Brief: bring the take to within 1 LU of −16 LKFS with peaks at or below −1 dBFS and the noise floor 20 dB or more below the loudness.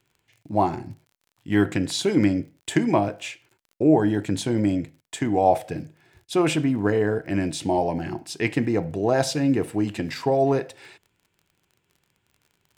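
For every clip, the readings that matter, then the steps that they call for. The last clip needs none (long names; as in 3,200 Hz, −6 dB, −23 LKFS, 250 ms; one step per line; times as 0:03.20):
crackle rate 31 per second; integrated loudness −23.5 LKFS; sample peak −5.5 dBFS; target loudness −16.0 LKFS
→ click removal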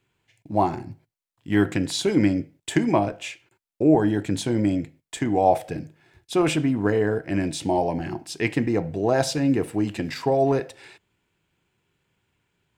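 crackle rate 0.39 per second; integrated loudness −23.5 LKFS; sample peak −5.5 dBFS; target loudness −16.0 LKFS
→ level +7.5 dB
brickwall limiter −1 dBFS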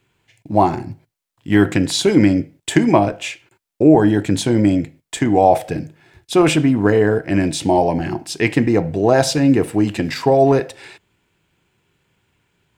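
integrated loudness −16.5 LKFS; sample peak −1.0 dBFS; background noise floor −76 dBFS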